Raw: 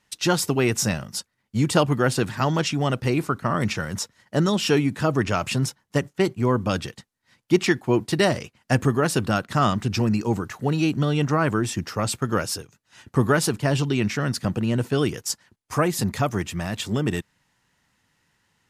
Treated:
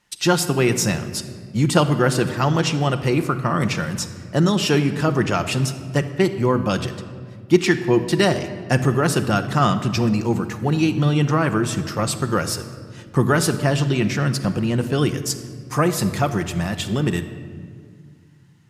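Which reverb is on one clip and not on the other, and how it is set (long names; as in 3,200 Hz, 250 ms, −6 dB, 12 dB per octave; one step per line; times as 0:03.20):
rectangular room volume 3,400 cubic metres, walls mixed, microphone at 0.86 metres
level +2 dB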